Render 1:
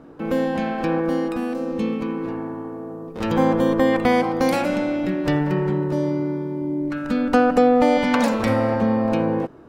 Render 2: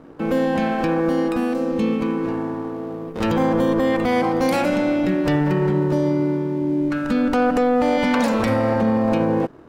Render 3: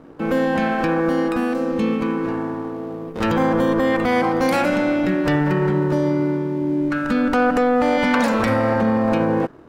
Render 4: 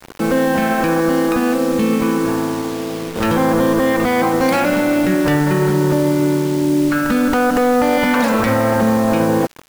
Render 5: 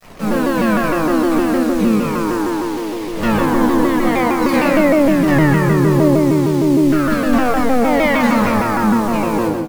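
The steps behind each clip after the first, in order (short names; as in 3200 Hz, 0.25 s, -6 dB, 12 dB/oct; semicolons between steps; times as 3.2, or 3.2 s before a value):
sample leveller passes 1; limiter -11.5 dBFS, peak gain reduction 6.5 dB
dynamic EQ 1500 Hz, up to +5 dB, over -37 dBFS, Q 1.3
limiter -13.5 dBFS, peak gain reduction 5.5 dB; bit-crush 6-bit; crackle 150/s -40 dBFS; gain +5.5 dB
feedback echo 0.124 s, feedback 34%, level -6.5 dB; shoebox room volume 530 m³, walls furnished, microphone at 5.9 m; shaped vibrato saw down 6.5 Hz, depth 160 cents; gain -9.5 dB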